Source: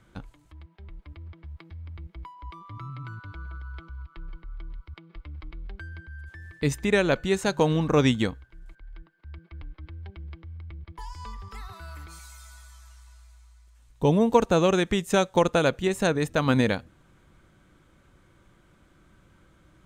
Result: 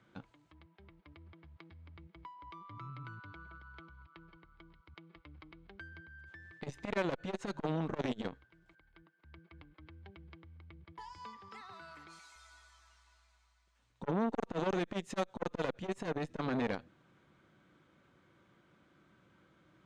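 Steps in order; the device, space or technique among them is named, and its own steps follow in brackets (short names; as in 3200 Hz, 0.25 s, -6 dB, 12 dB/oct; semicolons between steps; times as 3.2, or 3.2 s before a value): valve radio (BPF 140–4900 Hz; tube stage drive 20 dB, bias 0.55; core saturation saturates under 650 Hz); 11.18–12.36 HPF 140 Hz 12 dB/oct; gain -3 dB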